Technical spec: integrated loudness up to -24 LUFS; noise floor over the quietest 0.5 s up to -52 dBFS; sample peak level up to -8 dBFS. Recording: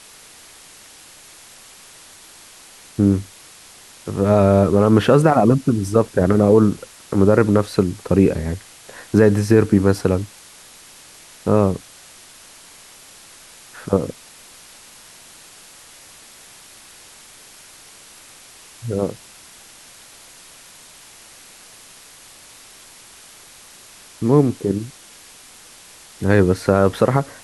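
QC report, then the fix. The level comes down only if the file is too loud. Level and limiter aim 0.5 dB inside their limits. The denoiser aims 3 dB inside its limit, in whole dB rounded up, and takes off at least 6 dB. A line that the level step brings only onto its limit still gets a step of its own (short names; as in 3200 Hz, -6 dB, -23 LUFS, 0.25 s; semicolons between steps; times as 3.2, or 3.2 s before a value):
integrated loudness -17.5 LUFS: fail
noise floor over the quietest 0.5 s -44 dBFS: fail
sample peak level -2.0 dBFS: fail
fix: denoiser 6 dB, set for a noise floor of -44 dBFS; gain -7 dB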